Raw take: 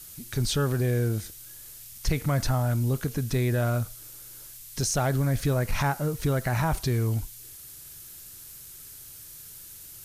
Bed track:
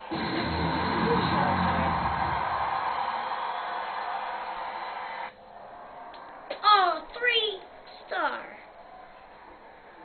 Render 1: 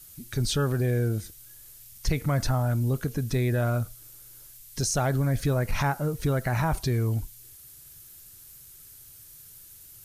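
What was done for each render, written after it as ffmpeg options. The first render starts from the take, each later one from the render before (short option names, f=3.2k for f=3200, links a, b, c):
-af "afftdn=nr=6:nf=-45"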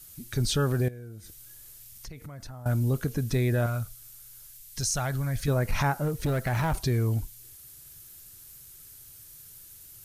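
-filter_complex "[0:a]asettb=1/sr,asplit=3[a][b][c];[a]atrim=end=0.884[d];[b]atrim=start=0.88:end=2.66,asetpts=PTS-STARTPTS,afade=t=in:d=0.004:c=qsin,afade=t=out:st=1.776:d=0.004:c=qsin,acompressor=threshold=-41dB:ratio=5:attack=3.2:release=140:knee=1:detection=peak[e];[c]atrim=start=2.656[f];[d][e]acrossfade=d=0.004:c1=hsin:c2=qsin[g];[g][f]acrossfade=d=0.004:c1=qsin:c2=hsin,asettb=1/sr,asplit=3[h][i][j];[h]atrim=end=3.664[k];[i]atrim=start=3.66:end=5.48,asetpts=PTS-STARTPTS,afade=t=in:d=0.004:c=qsin,afade=t=out:st=1.816:d=0.004:c=qsin,equalizer=f=360:t=o:w=2.3:g=-10[l];[j]atrim=start=5.476[m];[k][l]acrossfade=d=0.004:c1=hsin:c2=qsin[n];[n][m]acrossfade=d=0.004:c1=qsin:c2=hsin,asettb=1/sr,asplit=3[o][p][q];[o]atrim=end=6.044[r];[p]atrim=start=6.04:end=6.77,asetpts=PTS-STARTPTS,afade=t=in:d=0.004:c=qsin,afade=t=out:st=0.726:d=0.004:c=qsin,asoftclip=type=hard:threshold=-22.5dB[s];[q]atrim=start=6.766[t];[r][s]acrossfade=d=0.004:c1=hsin:c2=qsin[u];[u][t]acrossfade=d=0.004:c1=qsin:c2=hsin"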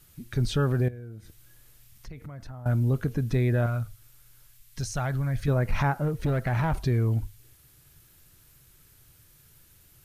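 -af "bass=f=250:g=2,treble=f=4k:g=-11,bandreject=f=50:t=h:w=6,bandreject=f=100:t=h:w=6"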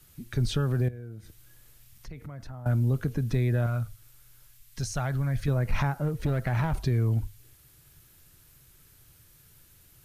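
-filter_complex "[0:a]acrossover=split=160|3000[a][b][c];[b]acompressor=threshold=-28dB:ratio=6[d];[a][d][c]amix=inputs=3:normalize=0"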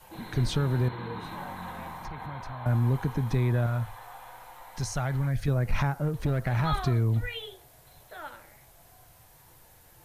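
-filter_complex "[1:a]volume=-13.5dB[a];[0:a][a]amix=inputs=2:normalize=0"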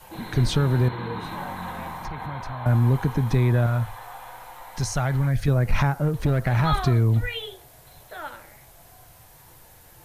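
-af "volume=5.5dB"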